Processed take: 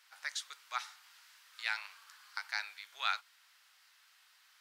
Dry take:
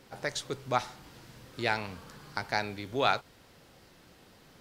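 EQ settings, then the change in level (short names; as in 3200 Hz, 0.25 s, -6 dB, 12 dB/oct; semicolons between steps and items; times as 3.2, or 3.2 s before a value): HPF 1200 Hz 24 dB/oct; -3.5 dB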